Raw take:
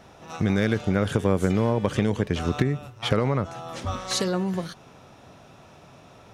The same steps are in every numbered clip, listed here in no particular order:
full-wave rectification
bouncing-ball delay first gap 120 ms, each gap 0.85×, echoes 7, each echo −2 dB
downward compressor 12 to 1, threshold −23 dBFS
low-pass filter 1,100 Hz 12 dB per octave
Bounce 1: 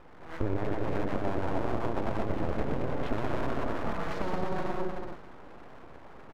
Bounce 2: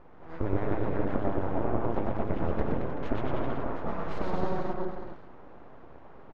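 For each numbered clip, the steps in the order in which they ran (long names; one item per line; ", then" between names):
bouncing-ball delay, then downward compressor, then low-pass filter, then full-wave rectification
downward compressor, then bouncing-ball delay, then full-wave rectification, then low-pass filter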